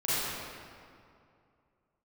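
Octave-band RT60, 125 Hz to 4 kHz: 2.7 s, 2.6 s, 2.5 s, 2.4 s, 1.9 s, 1.5 s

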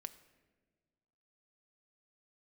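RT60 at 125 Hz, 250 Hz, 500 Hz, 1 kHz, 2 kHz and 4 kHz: 2.0 s, 1.9 s, 1.7 s, 1.2 s, 1.2 s, 0.85 s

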